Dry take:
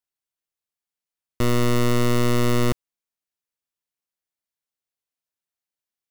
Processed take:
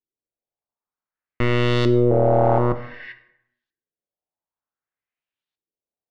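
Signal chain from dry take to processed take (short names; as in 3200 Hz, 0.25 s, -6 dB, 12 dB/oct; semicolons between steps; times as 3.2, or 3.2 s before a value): 2.1–2.58 sample sorter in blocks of 64 samples; 2.78–3.09 spectral repair 1500–5900 Hz before; LFO low-pass saw up 0.54 Hz 360–3900 Hz; plate-style reverb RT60 0.82 s, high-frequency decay 0.6×, DRR 8.5 dB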